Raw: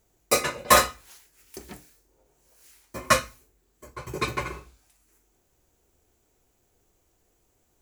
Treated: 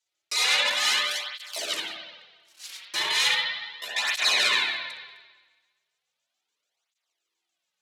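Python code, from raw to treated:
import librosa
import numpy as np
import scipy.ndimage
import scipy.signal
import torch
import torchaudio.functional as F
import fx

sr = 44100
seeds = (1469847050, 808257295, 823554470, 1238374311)

y = fx.pitch_trill(x, sr, semitones=9.0, every_ms=72)
y = fx.peak_eq(y, sr, hz=3700.0, db=8.5, octaves=1.7)
y = fx.echo_feedback(y, sr, ms=68, feedback_pct=33, wet_db=-11.0)
y = fx.over_compress(y, sr, threshold_db=-28.0, ratio=-1.0)
y = fx.leveller(y, sr, passes=5)
y = scipy.signal.sosfilt(scipy.signal.butter(2, 4700.0, 'lowpass', fs=sr, output='sos'), y)
y = np.diff(y, prepend=0.0)
y = fx.transient(y, sr, attack_db=-1, sustain_db=-7)
y = fx.highpass(y, sr, hz=110.0, slope=6)
y = fx.rev_spring(y, sr, rt60_s=1.3, pass_ms=(56,), chirp_ms=50, drr_db=-4.0)
y = fx.flanger_cancel(y, sr, hz=0.36, depth_ms=5.0)
y = y * 10.0 ** (3.0 / 20.0)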